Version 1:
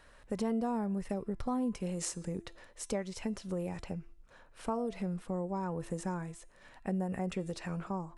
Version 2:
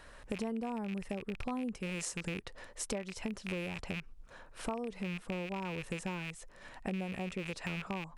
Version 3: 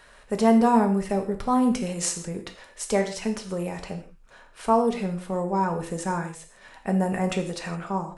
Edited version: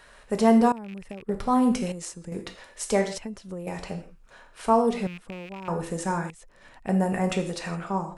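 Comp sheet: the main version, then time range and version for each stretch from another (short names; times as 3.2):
3
0.72–1.29 from 2
1.92–2.32 from 1
3.18–3.67 from 1
5.07–5.68 from 2
6.3–6.89 from 2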